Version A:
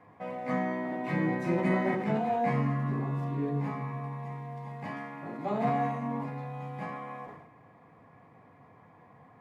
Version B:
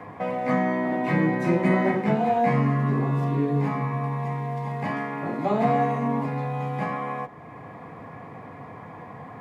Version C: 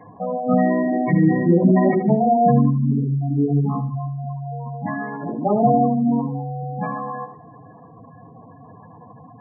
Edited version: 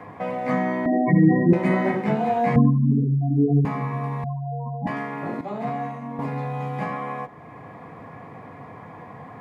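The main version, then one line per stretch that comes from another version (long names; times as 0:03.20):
B
0:00.86–0:01.53: punch in from C
0:02.56–0:03.65: punch in from C
0:04.24–0:04.87: punch in from C
0:05.41–0:06.19: punch in from A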